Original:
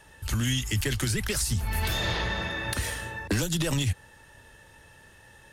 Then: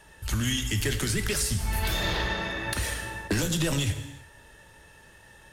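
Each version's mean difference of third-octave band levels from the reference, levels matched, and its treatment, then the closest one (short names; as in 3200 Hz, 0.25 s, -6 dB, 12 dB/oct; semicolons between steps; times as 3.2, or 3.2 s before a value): 2.5 dB: non-linear reverb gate 0.39 s falling, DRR 6.5 dB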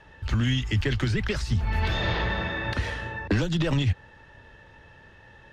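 5.0 dB: air absorption 210 m; gain +3.5 dB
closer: first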